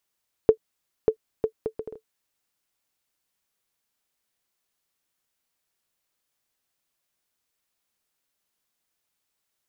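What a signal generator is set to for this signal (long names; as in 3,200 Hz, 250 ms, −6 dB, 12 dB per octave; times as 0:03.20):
bouncing ball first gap 0.59 s, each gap 0.61, 440 Hz, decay 84 ms −4.5 dBFS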